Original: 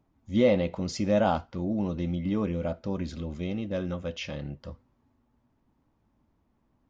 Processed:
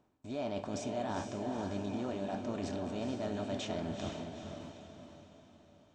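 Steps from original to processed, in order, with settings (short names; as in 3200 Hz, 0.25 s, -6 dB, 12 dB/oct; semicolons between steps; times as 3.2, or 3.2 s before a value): per-bin compression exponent 0.6; gate with hold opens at -37 dBFS; reverse; compressor 6:1, threshold -35 dBFS, peak gain reduction 18 dB; reverse; diffused feedback echo 0.514 s, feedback 47%, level -5 dB; varispeed +16%; gain -1 dB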